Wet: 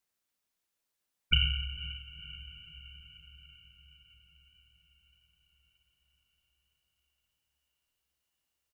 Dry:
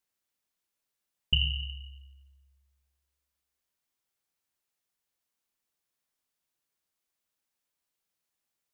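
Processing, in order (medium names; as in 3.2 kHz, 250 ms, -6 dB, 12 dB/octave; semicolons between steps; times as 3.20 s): echo that smears into a reverb 496 ms, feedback 63%, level -13.5 dB; harmony voices -12 st -17 dB, -4 st -14 dB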